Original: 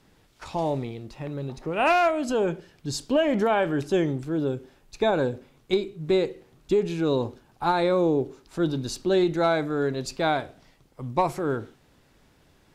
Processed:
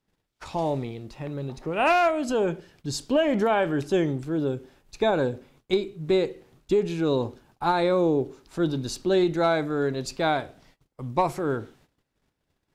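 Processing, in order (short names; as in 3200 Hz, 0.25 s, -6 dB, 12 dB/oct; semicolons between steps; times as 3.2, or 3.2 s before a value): gate -56 dBFS, range -20 dB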